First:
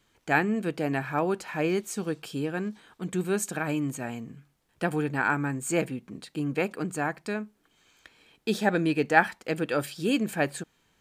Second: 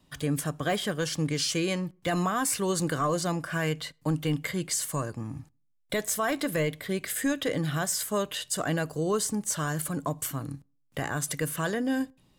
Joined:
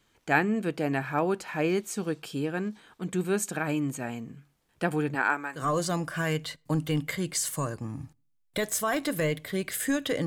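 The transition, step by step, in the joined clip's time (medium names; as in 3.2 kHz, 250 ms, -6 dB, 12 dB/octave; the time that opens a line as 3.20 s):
first
5.14–5.67 s: high-pass 220 Hz -> 1.1 kHz
5.60 s: go over to second from 2.96 s, crossfade 0.14 s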